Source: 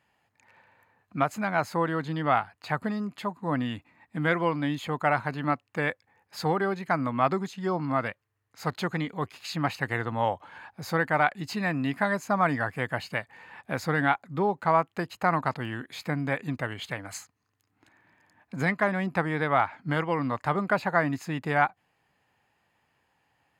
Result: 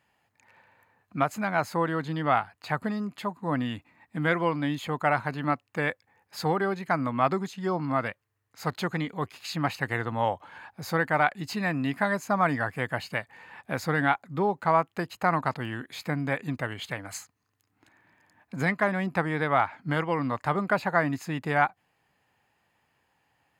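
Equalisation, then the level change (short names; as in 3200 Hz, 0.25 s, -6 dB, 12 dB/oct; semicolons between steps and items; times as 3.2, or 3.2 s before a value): high shelf 9800 Hz +3.5 dB; 0.0 dB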